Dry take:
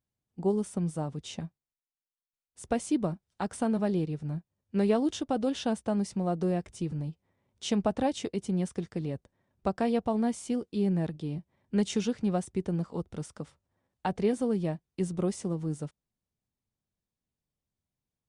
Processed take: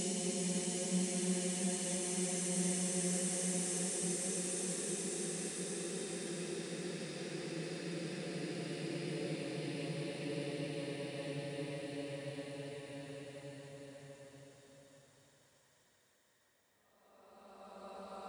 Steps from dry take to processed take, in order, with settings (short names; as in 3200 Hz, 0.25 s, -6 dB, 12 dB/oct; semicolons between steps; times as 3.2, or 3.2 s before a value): tilt +4 dB/oct; Paulstretch 18×, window 0.50 s, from 8.5